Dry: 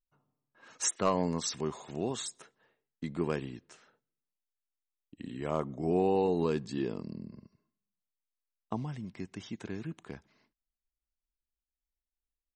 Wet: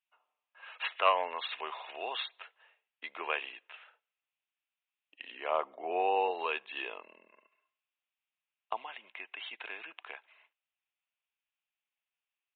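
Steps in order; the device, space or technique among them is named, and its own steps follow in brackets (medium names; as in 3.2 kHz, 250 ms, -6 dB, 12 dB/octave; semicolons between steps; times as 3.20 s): 5.31–6.31 s: tilt EQ -2.5 dB/octave; musical greeting card (resampled via 8 kHz; high-pass 650 Hz 24 dB/octave; peaking EQ 2.6 kHz +10 dB 0.48 oct); trim +5 dB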